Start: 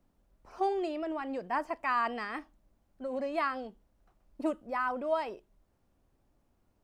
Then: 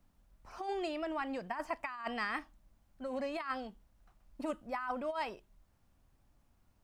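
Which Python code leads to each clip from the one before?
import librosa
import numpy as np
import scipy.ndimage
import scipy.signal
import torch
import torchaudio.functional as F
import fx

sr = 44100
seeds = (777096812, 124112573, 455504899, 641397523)

y = fx.peak_eq(x, sr, hz=410.0, db=-9.0, octaves=1.6)
y = fx.over_compress(y, sr, threshold_db=-36.0, ratio=-0.5)
y = y * librosa.db_to_amplitude(1.0)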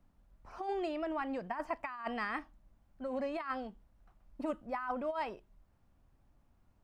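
y = fx.high_shelf(x, sr, hz=2800.0, db=-10.0)
y = y * librosa.db_to_amplitude(1.5)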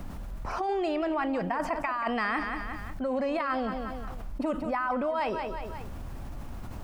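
y = fx.echo_feedback(x, sr, ms=181, feedback_pct=31, wet_db=-14.5)
y = fx.env_flatten(y, sr, amount_pct=70)
y = y * librosa.db_to_amplitude(5.0)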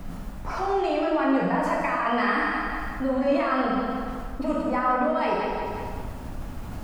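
y = fx.rev_plate(x, sr, seeds[0], rt60_s=1.6, hf_ratio=0.8, predelay_ms=0, drr_db=-4.0)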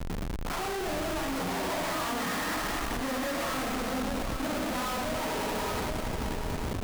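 y = fx.schmitt(x, sr, flips_db=-38.5)
y = y + 10.0 ** (-6.0 / 20.0) * np.pad(y, (int(828 * sr / 1000.0), 0))[:len(y)]
y = y * librosa.db_to_amplitude(-6.5)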